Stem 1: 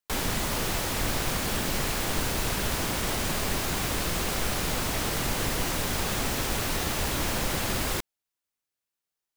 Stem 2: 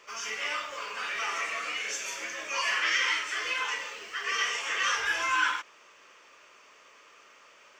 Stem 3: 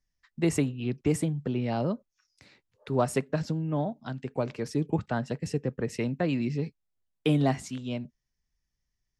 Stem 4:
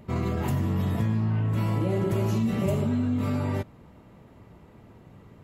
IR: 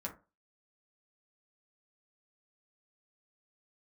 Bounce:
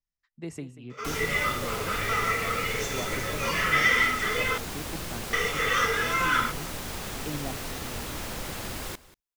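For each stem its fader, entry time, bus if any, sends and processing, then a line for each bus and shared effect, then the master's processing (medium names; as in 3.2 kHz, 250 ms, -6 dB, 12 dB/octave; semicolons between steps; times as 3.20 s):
-7.0 dB, 0.95 s, no send, echo send -19 dB, none
-3.0 dB, 0.90 s, muted 4.58–5.33 s, no send, no echo send, bass shelf 380 Hz +11 dB; small resonant body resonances 460/1300/2000/3500 Hz, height 15 dB, ringing for 35 ms
-12.0 dB, 0.00 s, no send, echo send -15 dB, none
-17.5 dB, 1.00 s, no send, no echo send, none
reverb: none
echo: delay 187 ms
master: none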